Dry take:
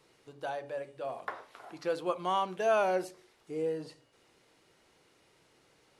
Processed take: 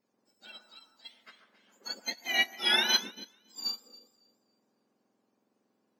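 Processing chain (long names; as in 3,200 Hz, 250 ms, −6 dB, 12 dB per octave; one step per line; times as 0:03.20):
frequency axis turned over on the octave scale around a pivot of 1,500 Hz
delay that swaps between a low-pass and a high-pass 139 ms, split 1,700 Hz, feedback 54%, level −3 dB
expander for the loud parts 2.5 to 1, over −44 dBFS
level +8 dB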